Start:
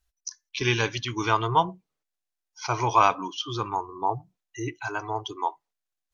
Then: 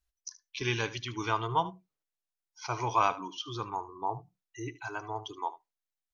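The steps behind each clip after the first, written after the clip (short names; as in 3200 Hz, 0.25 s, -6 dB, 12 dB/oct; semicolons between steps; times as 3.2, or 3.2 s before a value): echo 75 ms -17 dB; gain -7 dB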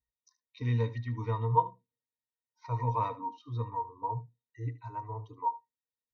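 octave resonator A#, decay 0.11 s; gain +9 dB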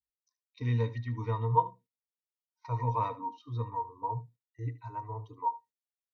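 gate -54 dBFS, range -13 dB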